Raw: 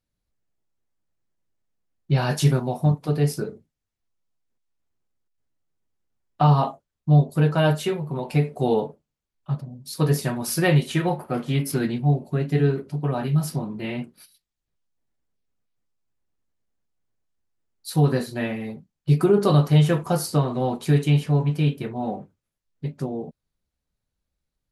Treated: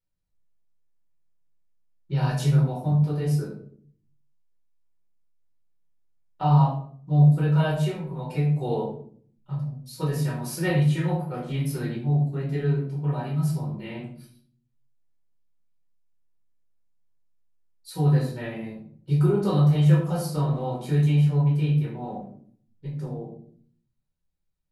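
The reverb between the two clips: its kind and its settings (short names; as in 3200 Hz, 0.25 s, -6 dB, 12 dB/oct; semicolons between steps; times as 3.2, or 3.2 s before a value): shoebox room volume 620 m³, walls furnished, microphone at 4.5 m; gain -12.5 dB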